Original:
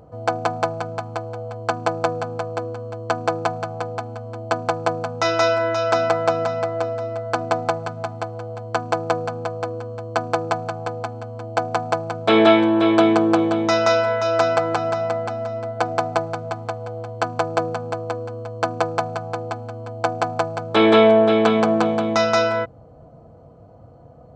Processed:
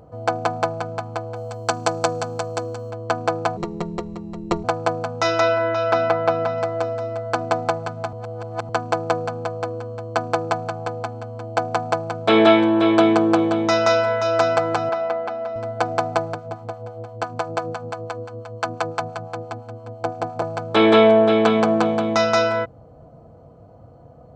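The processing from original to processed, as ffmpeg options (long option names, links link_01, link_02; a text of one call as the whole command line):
ffmpeg -i in.wav -filter_complex "[0:a]asettb=1/sr,asplit=3[link_01][link_02][link_03];[link_01]atrim=end=1.364[link_04];[link_02]atrim=start=1.36:end=2.91,asetpts=PTS-STARTPTS,afade=type=in:duration=0.004:curve=qsin,afade=type=out:start_time=1.546:duration=0.004:curve=qsin,bass=frequency=250:gain=0,treble=frequency=4000:gain=13[link_05];[link_03]atrim=start=2.906[link_06];[link_04][link_05]acrossfade=duration=0.004:curve1=hsin:curve2=qsin[link_07];[link_07][link_06]acrossfade=duration=0.004:curve1=qsin:curve2=hsin,asplit=3[link_08][link_09][link_10];[link_08]afade=type=out:start_time=3.56:duration=0.02[link_11];[link_09]afreqshift=-320,afade=type=in:start_time=3.56:duration=0.02,afade=type=out:start_time=4.63:duration=0.02[link_12];[link_10]afade=type=in:start_time=4.63:duration=0.02[link_13];[link_11][link_12][link_13]amix=inputs=3:normalize=0,asettb=1/sr,asplit=3[link_14][link_15][link_16];[link_14]atrim=end=5.404[link_17];[link_15]atrim=start=5.4:end=6.58,asetpts=PTS-STARTPTS,afade=type=in:duration=0.004:curve=qsin,afade=type=out:start_time=1.176:duration=0.004:curve=qsin,lowpass=3600[link_18];[link_16]atrim=start=6.576[link_19];[link_17][link_18]acrossfade=duration=0.004:curve1=hsin:curve2=qsin[link_20];[link_20][link_19]acrossfade=duration=0.004:curve1=qsin:curve2=hsin,asettb=1/sr,asplit=3[link_21][link_22][link_23];[link_21]atrim=end=14.894[link_24];[link_22]atrim=start=14.89:end=15.56,asetpts=PTS-STARTPTS,afade=type=in:duration=0.004:curve=qsin,afade=type=out:start_time=0.666:duration=0.004:curve=qsin,highpass=300,lowpass=3600[link_25];[link_23]atrim=start=15.556[link_26];[link_24][link_25]acrossfade=duration=0.004:curve1=hsin:curve2=qsin[link_27];[link_27][link_26]acrossfade=duration=0.004:curve1=qsin:curve2=hsin,asettb=1/sr,asplit=3[link_28][link_29][link_30];[link_28]atrim=end=16.344[link_31];[link_29]atrim=start=16.34:end=20.42,asetpts=PTS-STARTPTS,afade=type=in:duration=0.004:curve=qsin,afade=type=out:start_time=4.076:duration=0.004:curve=qsin,acrossover=split=710[link_32][link_33];[link_32]aeval=exprs='val(0)*(1-0.7/2+0.7/2*cos(2*PI*5.9*n/s))':channel_layout=same[link_34];[link_33]aeval=exprs='val(0)*(1-0.7/2-0.7/2*cos(2*PI*5.9*n/s))':channel_layout=same[link_35];[link_34][link_35]amix=inputs=2:normalize=0[link_36];[link_30]atrim=start=20.416[link_37];[link_31][link_36]acrossfade=duration=0.004:curve1=hsin:curve2=qsin[link_38];[link_38][link_37]acrossfade=duration=0.004:curve1=qsin:curve2=hsin,asplit=3[link_39][link_40][link_41];[link_39]atrim=end=8.132[link_42];[link_40]atrim=start=8.128:end=8.692,asetpts=PTS-STARTPTS,areverse[link_43];[link_41]atrim=start=8.688[link_44];[link_42][link_43]acrossfade=duration=0.004:curve1=hsin:curve2=hsin[link_45];[link_45][link_44]acrossfade=duration=0.004:curve1=hsin:curve2=hsin" out.wav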